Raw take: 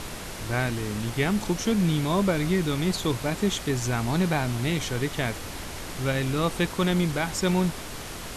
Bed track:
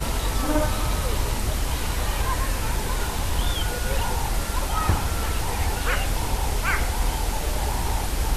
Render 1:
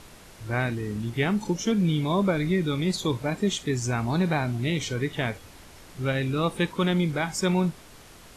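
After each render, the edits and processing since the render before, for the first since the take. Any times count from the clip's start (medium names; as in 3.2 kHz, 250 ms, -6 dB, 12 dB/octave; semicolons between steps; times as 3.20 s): noise print and reduce 12 dB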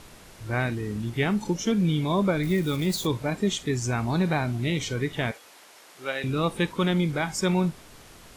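2.43–3.07 s: zero-crossing glitches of -31.5 dBFS; 5.31–6.24 s: high-pass 510 Hz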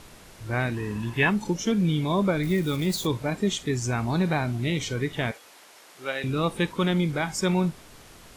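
0.74–1.30 s: small resonant body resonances 1/1.7/2.6 kHz, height 17 dB, ringing for 40 ms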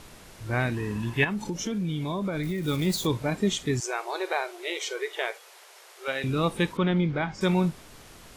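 1.24–2.68 s: compression, threshold -26 dBFS; 3.80–6.08 s: brick-wall FIR high-pass 340 Hz; 6.77–7.41 s: distance through air 220 m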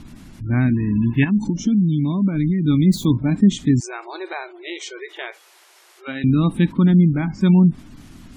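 spectral gate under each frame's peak -25 dB strong; resonant low shelf 350 Hz +9 dB, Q 3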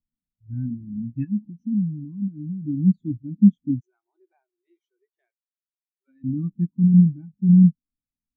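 spectral contrast expander 2.5:1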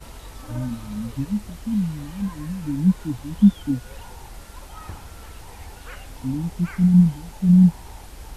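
add bed track -15 dB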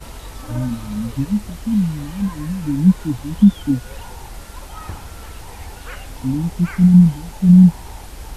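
trim +5.5 dB; peak limiter -2 dBFS, peak gain reduction 3 dB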